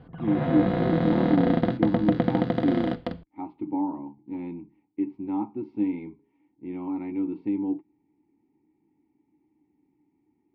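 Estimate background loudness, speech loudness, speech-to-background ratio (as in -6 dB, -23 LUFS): -25.5 LUFS, -29.5 LUFS, -4.0 dB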